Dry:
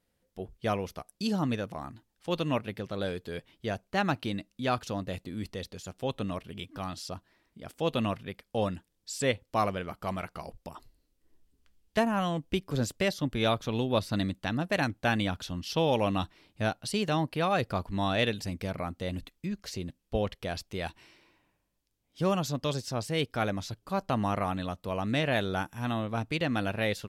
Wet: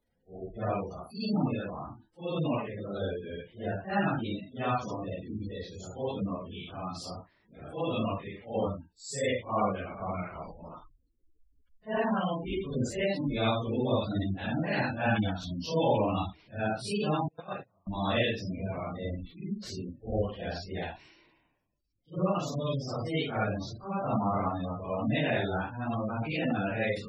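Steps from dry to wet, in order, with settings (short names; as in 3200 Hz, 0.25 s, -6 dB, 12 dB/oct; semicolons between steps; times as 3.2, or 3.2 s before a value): phase scrambler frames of 0.2 s; 17.28–17.87 gate -24 dBFS, range -38 dB; spectral gate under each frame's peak -20 dB strong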